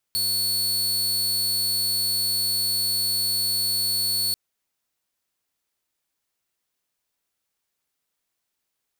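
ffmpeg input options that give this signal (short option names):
-f lavfi -i "aevalsrc='0.112*(2*mod(4420*t,1)-1)':d=4.19:s=44100"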